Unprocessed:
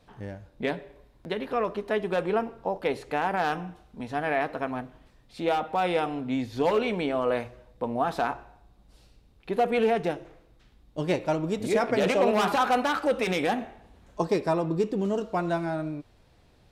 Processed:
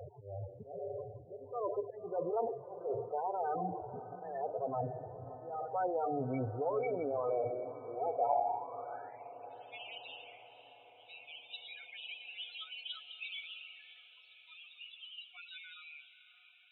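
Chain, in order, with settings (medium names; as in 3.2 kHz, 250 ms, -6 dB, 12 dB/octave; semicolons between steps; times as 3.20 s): spectral levelling over time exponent 0.6; level-controlled noise filter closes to 980 Hz, open at -17.5 dBFS; peaking EQ 210 Hz -13.5 dB 0.88 oct; reverse; compression 6:1, threshold -31 dBFS, peak gain reduction 13.5 dB; reverse; slow attack 352 ms; high-pass sweep 100 Hz -> 3.1 kHz, 7.19–9.42 s; loudest bins only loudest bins 8; on a send: echo that smears into a reverb 584 ms, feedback 58%, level -13.5 dB; on the sum: trim +1 dB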